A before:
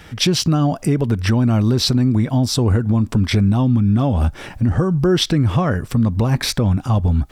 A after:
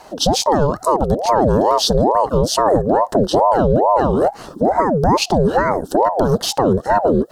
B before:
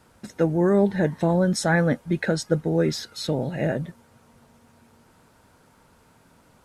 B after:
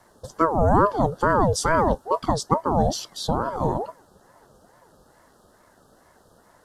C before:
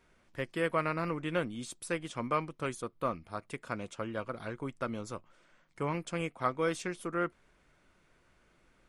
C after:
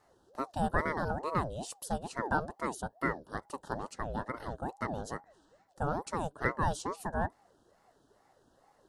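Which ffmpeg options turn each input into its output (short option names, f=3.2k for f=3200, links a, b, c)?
-af "asuperstop=centerf=2100:order=8:qfactor=1,aeval=exprs='val(0)*sin(2*PI*550*n/s+550*0.5/2.3*sin(2*PI*2.3*n/s))':c=same,volume=4dB"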